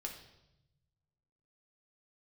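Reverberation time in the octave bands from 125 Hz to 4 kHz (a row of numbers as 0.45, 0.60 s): 1.9, 1.3, 0.95, 0.80, 0.80, 0.85 s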